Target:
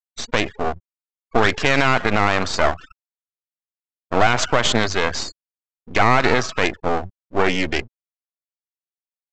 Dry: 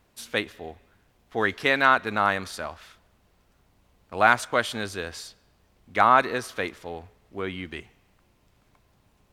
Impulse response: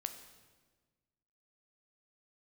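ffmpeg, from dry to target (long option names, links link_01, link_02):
-af "highpass=frequency=65:width=0.5412,highpass=frequency=65:width=1.3066,afftfilt=real='re*gte(hypot(re,im),0.0126)':imag='im*gte(hypot(re,im),0.0126)':win_size=1024:overlap=0.75,equalizer=frequency=690:width=2.9:gain=5,aresample=16000,aeval=exprs='max(val(0),0)':channel_layout=same,aresample=44100,alimiter=level_in=20dB:limit=-1dB:release=50:level=0:latency=1,volume=-1dB"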